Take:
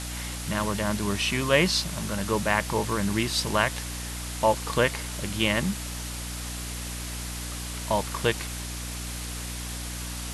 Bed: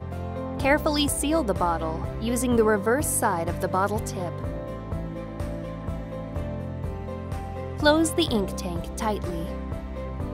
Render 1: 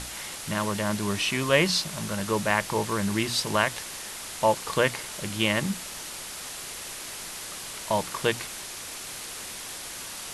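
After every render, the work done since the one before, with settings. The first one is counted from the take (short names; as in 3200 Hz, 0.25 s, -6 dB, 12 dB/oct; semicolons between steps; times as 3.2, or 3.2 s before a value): notches 60/120/180/240/300 Hz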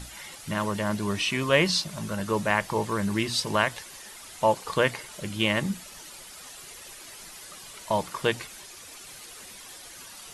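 denoiser 10 dB, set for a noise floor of -38 dBFS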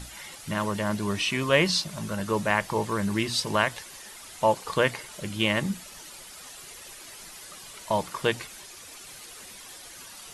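nothing audible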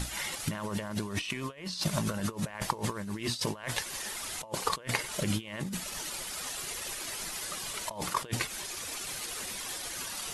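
negative-ratio compressor -35 dBFS, ratio -1; transient shaper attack +3 dB, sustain -6 dB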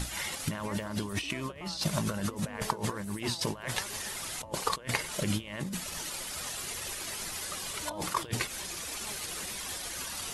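add bed -23.5 dB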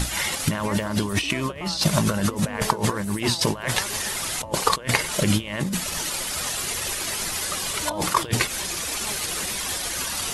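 gain +10 dB; limiter -3 dBFS, peak gain reduction 1.5 dB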